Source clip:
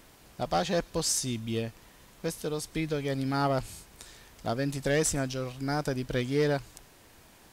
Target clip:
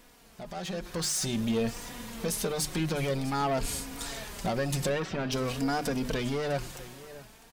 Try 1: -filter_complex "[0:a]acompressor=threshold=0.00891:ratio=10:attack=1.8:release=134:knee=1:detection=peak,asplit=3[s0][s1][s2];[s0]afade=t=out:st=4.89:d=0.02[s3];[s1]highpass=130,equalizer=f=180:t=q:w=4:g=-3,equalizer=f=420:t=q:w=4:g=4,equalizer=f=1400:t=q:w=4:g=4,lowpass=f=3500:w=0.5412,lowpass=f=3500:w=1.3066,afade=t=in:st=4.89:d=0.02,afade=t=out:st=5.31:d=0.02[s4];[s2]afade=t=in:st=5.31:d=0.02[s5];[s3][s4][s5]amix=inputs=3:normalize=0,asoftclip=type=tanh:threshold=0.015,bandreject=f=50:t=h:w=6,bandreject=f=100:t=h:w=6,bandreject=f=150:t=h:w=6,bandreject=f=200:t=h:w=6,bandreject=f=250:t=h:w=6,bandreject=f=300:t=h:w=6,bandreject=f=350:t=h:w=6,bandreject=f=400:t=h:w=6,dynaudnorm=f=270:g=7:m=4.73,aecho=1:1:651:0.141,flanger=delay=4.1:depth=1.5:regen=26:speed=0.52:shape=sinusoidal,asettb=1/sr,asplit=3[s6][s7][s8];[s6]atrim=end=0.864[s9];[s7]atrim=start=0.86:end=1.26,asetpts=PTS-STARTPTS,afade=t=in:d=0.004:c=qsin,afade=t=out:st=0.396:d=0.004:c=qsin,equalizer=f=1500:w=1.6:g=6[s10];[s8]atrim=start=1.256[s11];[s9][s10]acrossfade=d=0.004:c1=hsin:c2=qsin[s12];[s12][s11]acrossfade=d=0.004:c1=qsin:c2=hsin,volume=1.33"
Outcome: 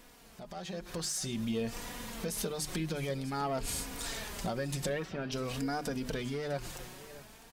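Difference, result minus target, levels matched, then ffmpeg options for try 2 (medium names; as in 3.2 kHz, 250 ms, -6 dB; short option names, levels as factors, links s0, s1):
compression: peak gain reduction +8.5 dB
-filter_complex "[0:a]acompressor=threshold=0.0266:ratio=10:attack=1.8:release=134:knee=1:detection=peak,asplit=3[s0][s1][s2];[s0]afade=t=out:st=4.89:d=0.02[s3];[s1]highpass=130,equalizer=f=180:t=q:w=4:g=-3,equalizer=f=420:t=q:w=4:g=4,equalizer=f=1400:t=q:w=4:g=4,lowpass=f=3500:w=0.5412,lowpass=f=3500:w=1.3066,afade=t=in:st=4.89:d=0.02,afade=t=out:st=5.31:d=0.02[s4];[s2]afade=t=in:st=5.31:d=0.02[s5];[s3][s4][s5]amix=inputs=3:normalize=0,asoftclip=type=tanh:threshold=0.015,bandreject=f=50:t=h:w=6,bandreject=f=100:t=h:w=6,bandreject=f=150:t=h:w=6,bandreject=f=200:t=h:w=6,bandreject=f=250:t=h:w=6,bandreject=f=300:t=h:w=6,bandreject=f=350:t=h:w=6,bandreject=f=400:t=h:w=6,dynaudnorm=f=270:g=7:m=4.73,aecho=1:1:651:0.141,flanger=delay=4.1:depth=1.5:regen=26:speed=0.52:shape=sinusoidal,asettb=1/sr,asplit=3[s6][s7][s8];[s6]atrim=end=0.864[s9];[s7]atrim=start=0.86:end=1.26,asetpts=PTS-STARTPTS,afade=t=in:d=0.004:c=qsin,afade=t=out:st=0.396:d=0.004:c=qsin,equalizer=f=1500:w=1.6:g=6[s10];[s8]atrim=start=1.256[s11];[s9][s10]acrossfade=d=0.004:c1=hsin:c2=qsin[s12];[s12][s11]acrossfade=d=0.004:c1=qsin:c2=hsin,volume=1.33"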